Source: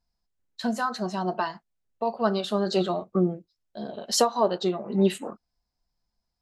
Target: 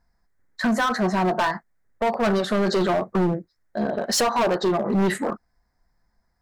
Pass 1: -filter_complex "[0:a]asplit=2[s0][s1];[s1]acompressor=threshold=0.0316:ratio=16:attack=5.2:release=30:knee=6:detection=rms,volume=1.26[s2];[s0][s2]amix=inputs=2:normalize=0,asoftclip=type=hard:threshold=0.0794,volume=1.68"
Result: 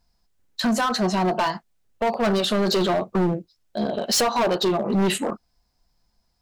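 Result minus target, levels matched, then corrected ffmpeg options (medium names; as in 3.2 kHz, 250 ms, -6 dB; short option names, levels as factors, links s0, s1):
2 kHz band -2.5 dB
-filter_complex "[0:a]asplit=2[s0][s1];[s1]acompressor=threshold=0.0316:ratio=16:attack=5.2:release=30:knee=6:detection=rms,lowpass=f=1900:t=q:w=4,volume=1.26[s2];[s0][s2]amix=inputs=2:normalize=0,asoftclip=type=hard:threshold=0.0794,volume=1.68"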